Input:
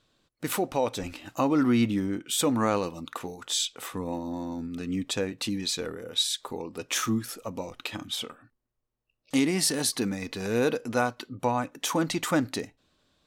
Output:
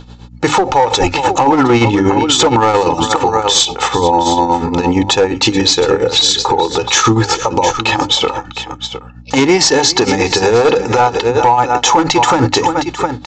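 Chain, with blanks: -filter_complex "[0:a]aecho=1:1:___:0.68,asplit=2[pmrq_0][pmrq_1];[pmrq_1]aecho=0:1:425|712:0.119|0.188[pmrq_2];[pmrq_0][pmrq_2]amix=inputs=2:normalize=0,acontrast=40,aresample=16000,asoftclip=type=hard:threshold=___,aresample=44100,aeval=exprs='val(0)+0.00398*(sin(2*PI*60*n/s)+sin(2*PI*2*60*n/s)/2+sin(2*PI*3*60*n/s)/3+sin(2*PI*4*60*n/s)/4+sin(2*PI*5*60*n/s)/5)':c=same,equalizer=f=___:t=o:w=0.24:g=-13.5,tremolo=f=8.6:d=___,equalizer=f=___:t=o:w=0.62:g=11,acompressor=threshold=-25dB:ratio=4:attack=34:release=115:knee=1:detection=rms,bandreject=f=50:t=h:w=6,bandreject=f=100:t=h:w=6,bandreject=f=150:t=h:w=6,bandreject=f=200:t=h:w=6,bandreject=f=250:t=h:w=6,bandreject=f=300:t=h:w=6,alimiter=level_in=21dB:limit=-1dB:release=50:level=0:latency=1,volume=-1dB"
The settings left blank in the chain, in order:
2.3, -15.5dB, 70, 0.77, 860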